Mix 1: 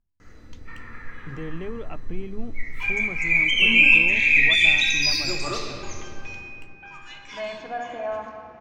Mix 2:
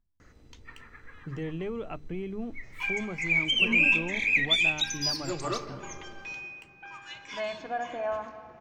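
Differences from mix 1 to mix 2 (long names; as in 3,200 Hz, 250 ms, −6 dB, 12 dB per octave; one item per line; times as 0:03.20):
first sound: send off
second sound: send −6.0 dB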